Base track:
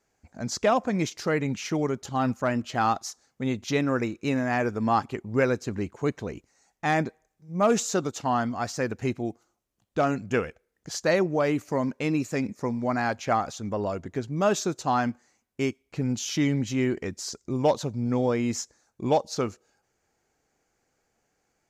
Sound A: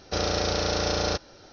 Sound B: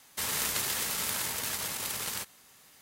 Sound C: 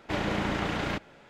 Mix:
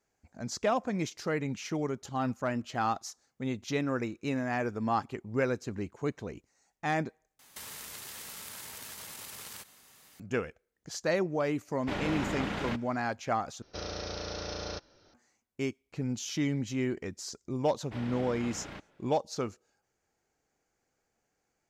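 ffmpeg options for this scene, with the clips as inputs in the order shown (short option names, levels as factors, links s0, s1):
-filter_complex "[3:a]asplit=2[s0][s1];[0:a]volume=0.501[s2];[2:a]acompressor=threshold=0.01:ratio=6:attack=3.2:release=140:knee=1:detection=peak[s3];[1:a]bandreject=f=780:w=15[s4];[s1]equalizer=f=6800:w=6.4:g=-6.5[s5];[s2]asplit=3[s6][s7][s8];[s6]atrim=end=7.394[s9];[s3]atrim=end=2.81,asetpts=PTS-STARTPTS,volume=0.891[s10];[s7]atrim=start=10.196:end=13.624[s11];[s4]atrim=end=1.52,asetpts=PTS-STARTPTS,volume=0.251[s12];[s8]atrim=start=15.136[s13];[s0]atrim=end=1.29,asetpts=PTS-STARTPTS,volume=0.596,afade=t=in:d=0.004:c=hsin,afade=t=out:st=1.286:d=0.004:c=hsin,adelay=519498S[s14];[s5]atrim=end=1.29,asetpts=PTS-STARTPTS,volume=0.211,afade=t=in:d=0.004:c=hsin,afade=t=out:st=1.286:d=0.004:c=hsin,adelay=17820[s15];[s9][s10]acrossfade=d=0.004:c1=hsin:c2=hsin[s16];[s16][s11]acrossfade=d=0.004:c1=hsin:c2=hsin[s17];[s17][s12]acrossfade=d=0.004:c1=hsin:c2=hsin[s18];[s18][s13]acrossfade=d=0.004:c1=hsin:c2=hsin[s19];[s19][s14][s15]amix=inputs=3:normalize=0"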